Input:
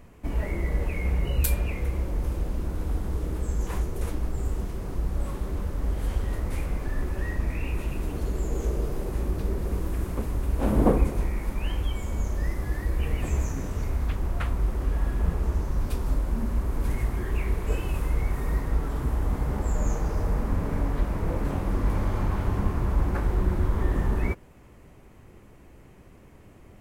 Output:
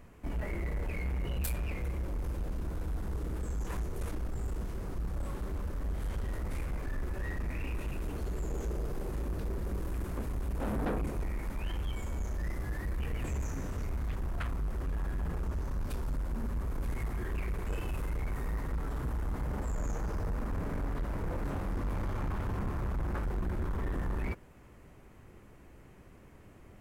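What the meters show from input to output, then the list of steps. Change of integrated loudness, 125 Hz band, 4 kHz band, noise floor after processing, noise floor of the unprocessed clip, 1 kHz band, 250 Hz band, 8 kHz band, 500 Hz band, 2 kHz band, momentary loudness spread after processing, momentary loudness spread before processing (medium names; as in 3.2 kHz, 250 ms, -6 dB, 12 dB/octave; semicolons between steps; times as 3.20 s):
-8.0 dB, -8.0 dB, -7.0 dB, -54 dBFS, -51 dBFS, -6.5 dB, -8.0 dB, -8.0 dB, -8.0 dB, -5.5 dB, 3 LU, 5 LU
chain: saturation -25 dBFS, distortion -10 dB; peaking EQ 1.5 kHz +3 dB; trim -4 dB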